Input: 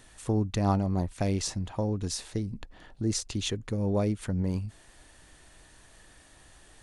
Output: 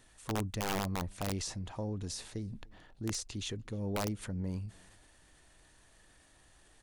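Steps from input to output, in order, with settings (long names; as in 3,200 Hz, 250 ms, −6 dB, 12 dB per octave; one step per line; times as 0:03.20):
transient designer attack −1 dB, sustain +5 dB
slap from a distant wall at 51 metres, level −28 dB
wrap-around overflow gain 19 dB
level −8 dB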